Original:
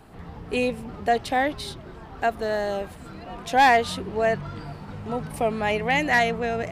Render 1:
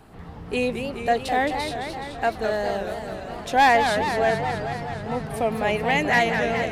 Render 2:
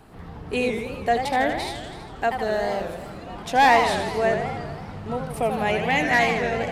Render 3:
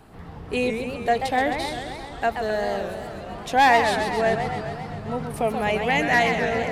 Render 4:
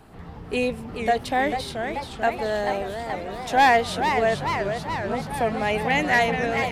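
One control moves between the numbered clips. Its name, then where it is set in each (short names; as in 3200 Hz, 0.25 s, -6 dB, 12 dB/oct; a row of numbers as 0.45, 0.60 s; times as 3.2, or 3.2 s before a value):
warbling echo, time: 213, 81, 132, 435 ms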